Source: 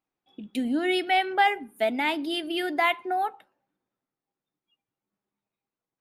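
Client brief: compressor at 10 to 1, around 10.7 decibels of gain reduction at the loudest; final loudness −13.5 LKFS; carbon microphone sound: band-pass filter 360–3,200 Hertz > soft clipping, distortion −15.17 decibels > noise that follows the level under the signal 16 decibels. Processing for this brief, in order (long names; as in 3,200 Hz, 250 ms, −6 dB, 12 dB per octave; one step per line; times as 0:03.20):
downward compressor 10 to 1, threshold −27 dBFS
band-pass filter 360–3,200 Hz
soft clipping −27 dBFS
noise that follows the level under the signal 16 dB
level +22 dB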